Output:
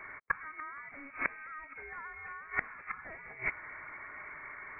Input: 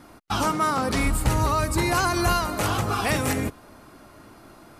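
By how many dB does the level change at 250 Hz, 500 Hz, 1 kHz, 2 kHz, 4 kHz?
-28.5 dB, -24.5 dB, -18.5 dB, -6.5 dB, under -40 dB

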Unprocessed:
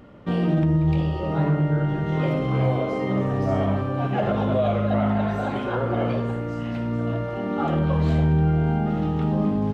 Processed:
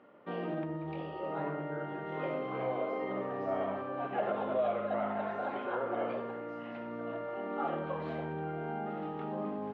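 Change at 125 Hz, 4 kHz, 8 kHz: -24.0 dB, -13.5 dB, n/a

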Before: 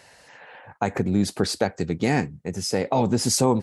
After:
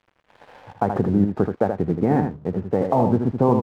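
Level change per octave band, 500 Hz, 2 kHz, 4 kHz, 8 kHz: +3.5 dB, -7.0 dB, under -20 dB, under -30 dB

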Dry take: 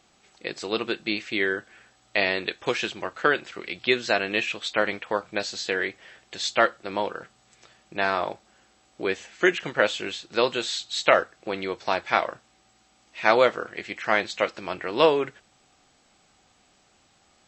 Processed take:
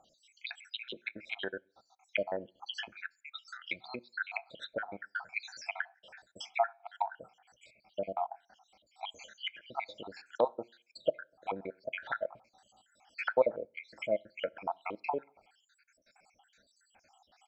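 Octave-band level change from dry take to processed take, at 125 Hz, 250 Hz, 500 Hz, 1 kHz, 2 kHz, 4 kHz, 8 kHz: -15.5, -17.0, -11.0, -11.0, -14.0, -14.5, -19.5 dB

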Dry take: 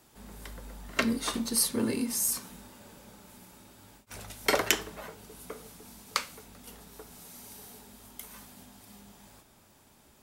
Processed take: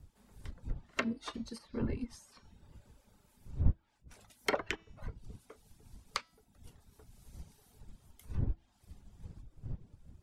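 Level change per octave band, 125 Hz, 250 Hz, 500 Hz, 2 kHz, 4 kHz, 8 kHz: +7.5, -7.5, -7.0, -7.5, -12.0, -22.0 dB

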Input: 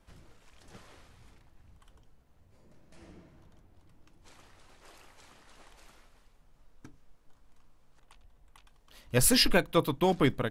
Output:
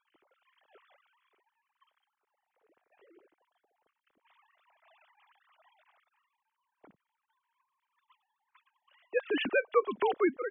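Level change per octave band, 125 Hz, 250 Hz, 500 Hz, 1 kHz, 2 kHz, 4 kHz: under -25 dB, -6.5 dB, 0.0 dB, -1.0 dB, -1.5 dB, -13.0 dB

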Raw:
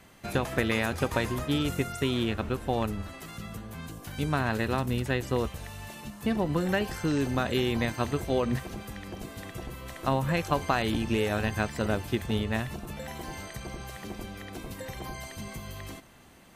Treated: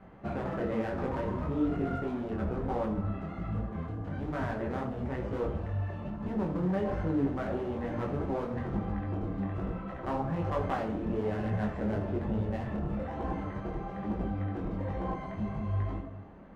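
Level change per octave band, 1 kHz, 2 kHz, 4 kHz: -3.5, -10.5, -19.0 dB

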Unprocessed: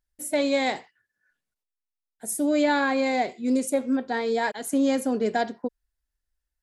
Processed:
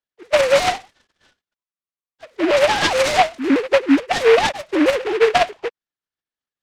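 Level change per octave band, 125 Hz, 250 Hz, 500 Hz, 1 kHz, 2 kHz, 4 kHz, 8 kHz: n/a, +3.5 dB, +10.0 dB, +8.5 dB, +9.0 dB, +12.5 dB, +3.5 dB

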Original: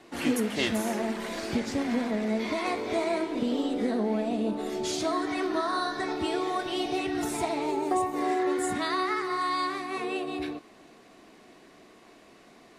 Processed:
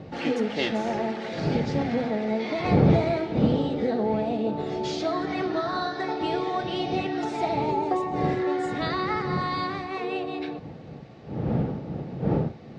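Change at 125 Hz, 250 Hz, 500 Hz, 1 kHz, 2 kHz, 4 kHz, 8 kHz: +16.5 dB, +2.5 dB, +3.5 dB, +2.0 dB, 0.0 dB, -0.5 dB, under -10 dB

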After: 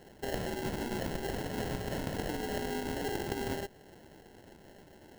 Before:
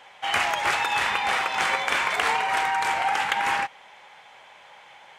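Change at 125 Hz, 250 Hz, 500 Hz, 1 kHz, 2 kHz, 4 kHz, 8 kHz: +8.5, +7.5, -1.0, -18.5, -19.0, -15.0, -10.0 dB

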